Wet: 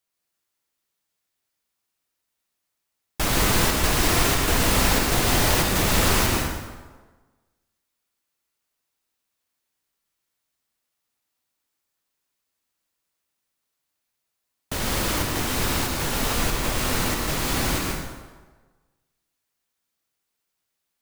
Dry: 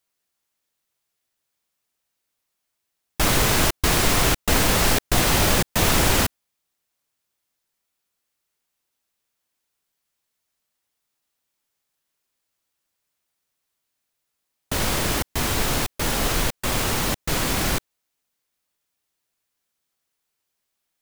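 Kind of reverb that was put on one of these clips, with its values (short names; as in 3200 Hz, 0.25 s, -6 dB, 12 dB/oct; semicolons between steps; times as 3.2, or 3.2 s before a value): plate-style reverb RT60 1.3 s, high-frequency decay 0.7×, pre-delay 0.1 s, DRR -0.5 dB; gain -4 dB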